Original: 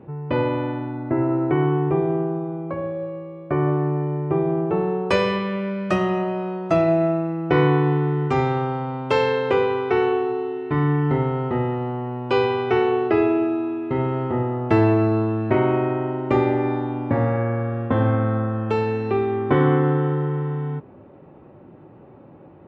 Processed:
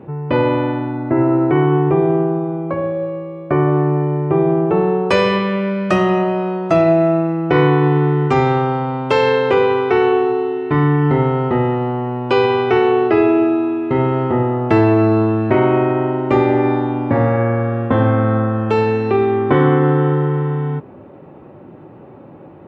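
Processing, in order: bass shelf 62 Hz -8.5 dB; in parallel at +2.5 dB: peak limiter -14 dBFS, peak gain reduction 8.5 dB

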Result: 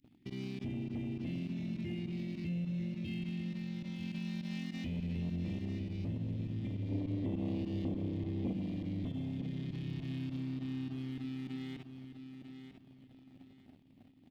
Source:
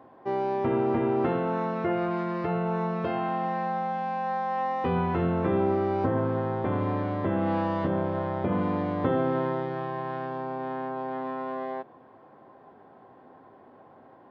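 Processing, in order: inverse Chebyshev band-stop 450–1500 Hz, stop band 40 dB; tone controls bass -3 dB, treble +3 dB; volume shaper 102 bpm, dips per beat 2, -21 dB, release 71 ms; bass shelf 93 Hz +11.5 dB; waveshaping leveller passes 2; compression, threshold -31 dBFS, peak gain reduction 9.5 dB; peak limiter -33.5 dBFS, peak gain reduction 9 dB; time-frequency box 6.90–8.52 s, 230–1200 Hz +8 dB; feedback delay 947 ms, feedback 29%, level -9 dB

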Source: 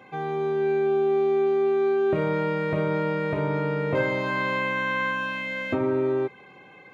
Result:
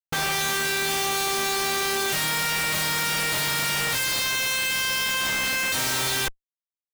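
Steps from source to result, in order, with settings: formants flattened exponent 0.1; Schmitt trigger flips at -34 dBFS

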